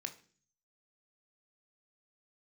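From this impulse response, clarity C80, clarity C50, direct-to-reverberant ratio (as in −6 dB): 19.0 dB, 15.0 dB, 6.0 dB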